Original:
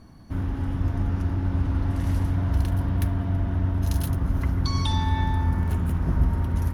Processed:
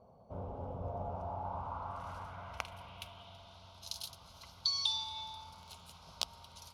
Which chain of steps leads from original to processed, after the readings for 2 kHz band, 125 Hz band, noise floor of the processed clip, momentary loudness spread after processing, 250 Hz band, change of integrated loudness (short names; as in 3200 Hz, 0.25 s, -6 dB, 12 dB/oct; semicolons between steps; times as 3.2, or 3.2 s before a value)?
-13.0 dB, -26.0 dB, -59 dBFS, 20 LU, -25.5 dB, -14.5 dB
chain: wrapped overs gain 11.5 dB; band-pass sweep 510 Hz -> 4200 Hz, 0.81–3.56; fixed phaser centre 740 Hz, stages 4; gain +6 dB